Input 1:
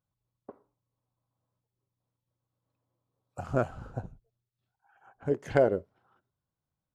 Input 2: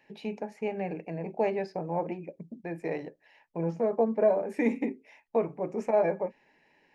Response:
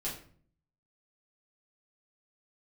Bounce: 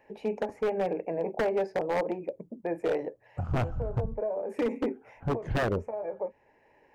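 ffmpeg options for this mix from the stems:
-filter_complex "[0:a]aemphasis=mode=reproduction:type=riaa,volume=-3dB,asplit=2[a][b];[1:a]equalizer=f=500:t=o:w=1:g=9,equalizer=f=1k:t=o:w=1:g=5,equalizer=f=4k:t=o:w=1:g=-9,acompressor=threshold=-21dB:ratio=6,equalizer=f=160:t=o:w=0.26:g=-7.5,volume=-0.5dB[c];[b]apad=whole_len=306266[d];[c][d]sidechaincompress=threshold=-31dB:ratio=16:attack=16:release=1070[e];[a][e]amix=inputs=2:normalize=0,aeval=exprs='0.0891*(abs(mod(val(0)/0.0891+3,4)-2)-1)':c=same"

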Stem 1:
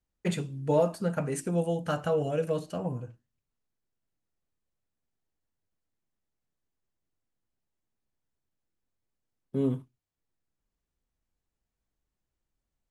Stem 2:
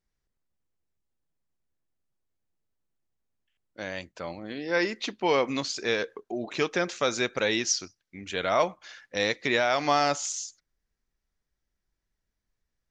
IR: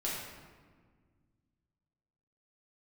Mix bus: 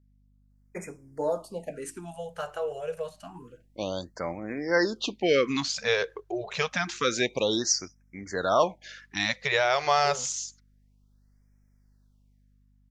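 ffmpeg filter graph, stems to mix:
-filter_complex "[0:a]highpass=320,adelay=500,volume=-3dB[a];[1:a]dynaudnorm=f=160:g=9:m=15dB,aeval=exprs='val(0)+0.00224*(sin(2*PI*50*n/s)+sin(2*PI*2*50*n/s)/2+sin(2*PI*3*50*n/s)/3+sin(2*PI*4*50*n/s)/4+sin(2*PI*5*50*n/s)/5)':c=same,volume=-8.5dB[b];[a][b]amix=inputs=2:normalize=0,afftfilt=real='re*(1-between(b*sr/1024,230*pow(3600/230,0.5+0.5*sin(2*PI*0.28*pts/sr))/1.41,230*pow(3600/230,0.5+0.5*sin(2*PI*0.28*pts/sr))*1.41))':imag='im*(1-between(b*sr/1024,230*pow(3600/230,0.5+0.5*sin(2*PI*0.28*pts/sr))/1.41,230*pow(3600/230,0.5+0.5*sin(2*PI*0.28*pts/sr))*1.41))':win_size=1024:overlap=0.75"

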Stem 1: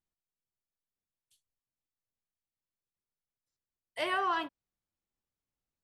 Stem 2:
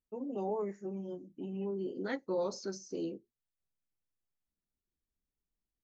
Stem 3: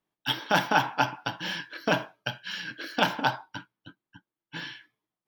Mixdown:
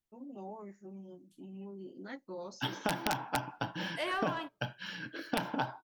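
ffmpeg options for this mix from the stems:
-filter_complex "[0:a]asoftclip=type=tanh:threshold=-24dB,volume=-1dB[a];[1:a]equalizer=f=450:t=o:w=0.34:g=-11.5,volume=-6.5dB[b];[2:a]tiltshelf=f=1.2k:g=5.5,aeval=exprs='(mod(2.51*val(0)+1,2)-1)/2.51':c=same,adelay=2350,volume=-4.5dB[c];[a][b][c]amix=inputs=3:normalize=0,acompressor=threshold=-29dB:ratio=6"

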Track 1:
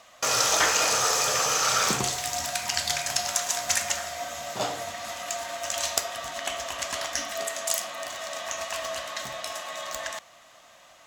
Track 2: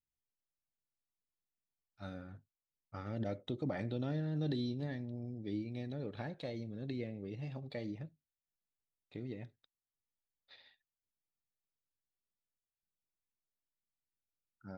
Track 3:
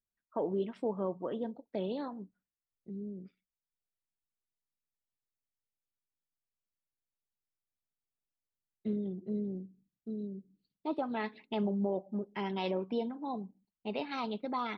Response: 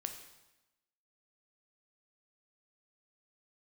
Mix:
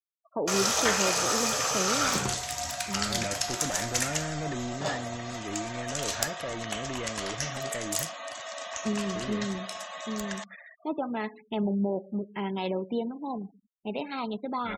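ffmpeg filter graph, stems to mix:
-filter_complex "[0:a]adelay=250,volume=-3.5dB[a];[1:a]firequalizer=gain_entry='entry(330,0);entry(1500,7);entry(3500,-13)':delay=0.05:min_phase=1,asplit=2[b][c];[c]highpass=f=720:p=1,volume=20dB,asoftclip=type=tanh:threshold=-30dB[d];[b][d]amix=inputs=2:normalize=0,lowpass=f=2.6k:p=1,volume=-6dB,adynamicequalizer=threshold=0.00141:dfrequency=1500:dqfactor=0.7:tfrequency=1500:tqfactor=0.7:attack=5:release=100:ratio=0.375:range=2.5:mode=boostabove:tftype=highshelf,volume=0dB[e];[2:a]volume=0.5dB,asplit=2[f][g];[g]volume=-8.5dB[h];[3:a]atrim=start_sample=2205[i];[h][i]afir=irnorm=-1:irlink=0[j];[a][e][f][j]amix=inputs=4:normalize=0,afftfilt=real='re*gte(hypot(re,im),0.00631)':imag='im*gte(hypot(re,im),0.00631)':win_size=1024:overlap=0.75,lowshelf=f=93:g=9.5"

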